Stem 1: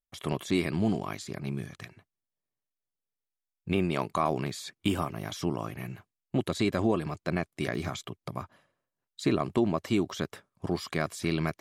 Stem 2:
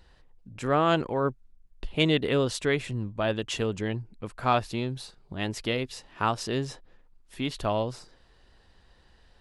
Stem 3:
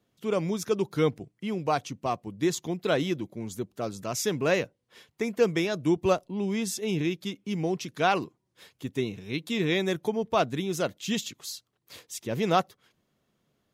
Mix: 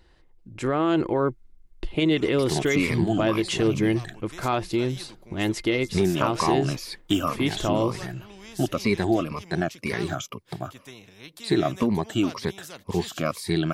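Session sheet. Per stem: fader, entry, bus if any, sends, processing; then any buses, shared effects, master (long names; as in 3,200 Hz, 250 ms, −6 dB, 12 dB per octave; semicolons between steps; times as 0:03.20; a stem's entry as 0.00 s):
+1.0 dB, 2.25 s, no bus, no send, rippled gain that drifts along the octave scale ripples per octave 0.89, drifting −2 Hz, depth 16 dB
−1.0 dB, 0.00 s, bus A, no send, hollow resonant body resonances 340/2,100 Hz, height 13 dB, ringing for 85 ms
−19.5 dB, 1.90 s, bus A, no send, notch filter 6,600 Hz, Q 23; every bin compressed towards the loudest bin 2 to 1
bus A: 0.0 dB, automatic gain control gain up to 5 dB; brickwall limiter −14 dBFS, peak gain reduction 8.5 dB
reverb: not used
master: no processing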